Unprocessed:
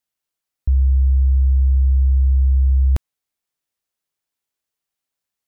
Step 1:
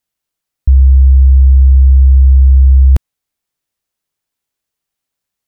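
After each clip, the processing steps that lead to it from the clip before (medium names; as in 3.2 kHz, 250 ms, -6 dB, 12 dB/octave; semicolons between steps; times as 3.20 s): bass shelf 230 Hz +5 dB; trim +4.5 dB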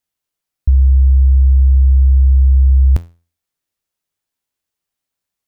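feedback comb 85 Hz, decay 0.35 s, harmonics all, mix 60%; trim +2.5 dB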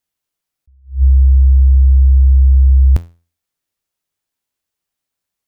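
attacks held to a fixed rise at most 200 dB/s; trim +1 dB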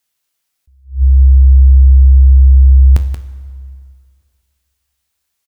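delay 180 ms -11.5 dB; plate-style reverb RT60 2.2 s, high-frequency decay 0.75×, DRR 14.5 dB; tape noise reduction on one side only encoder only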